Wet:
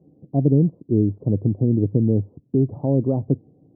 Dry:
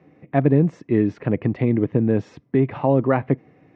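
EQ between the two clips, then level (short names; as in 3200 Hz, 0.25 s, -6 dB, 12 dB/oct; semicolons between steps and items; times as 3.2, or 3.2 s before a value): Gaussian blur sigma 15 samples; dynamic EQ 100 Hz, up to +7 dB, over -43 dBFS, Q 5.6; air absorption 420 m; +1.5 dB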